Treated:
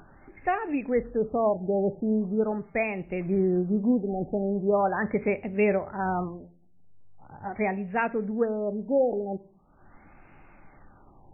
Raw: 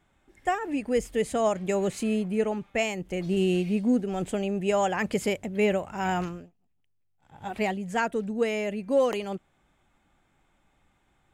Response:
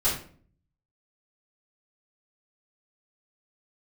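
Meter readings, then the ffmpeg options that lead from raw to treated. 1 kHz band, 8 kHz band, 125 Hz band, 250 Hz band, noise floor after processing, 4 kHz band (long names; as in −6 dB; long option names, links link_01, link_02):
+0.5 dB, below −40 dB, 0.0 dB, +0.5 dB, −56 dBFS, below −20 dB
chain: -filter_complex "[0:a]acompressor=mode=upward:threshold=-40dB:ratio=2.5,asplit=2[link_01][link_02];[1:a]atrim=start_sample=2205[link_03];[link_02][link_03]afir=irnorm=-1:irlink=0,volume=-24.5dB[link_04];[link_01][link_04]amix=inputs=2:normalize=0,afftfilt=real='re*lt(b*sr/1024,870*pow(2900/870,0.5+0.5*sin(2*PI*0.41*pts/sr)))':imag='im*lt(b*sr/1024,870*pow(2900/870,0.5+0.5*sin(2*PI*0.41*pts/sr)))':win_size=1024:overlap=0.75"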